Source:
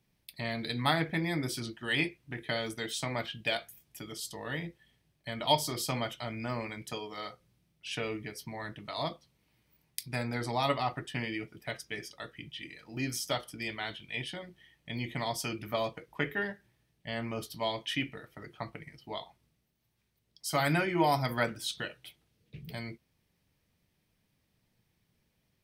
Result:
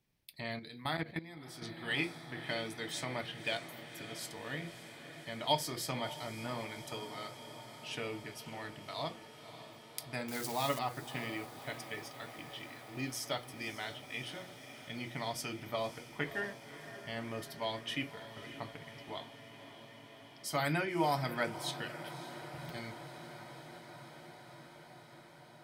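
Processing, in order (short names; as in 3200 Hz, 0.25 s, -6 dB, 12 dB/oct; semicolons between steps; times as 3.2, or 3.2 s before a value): 10.28–10.79 switching spikes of -27.5 dBFS; bell 200 Hz -4 dB 0.22 oct; notches 60/120/180 Hz; diffused feedback echo 0.571 s, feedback 79%, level -13 dB; 0.59–1.62 level quantiser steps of 15 dB; gain -4.5 dB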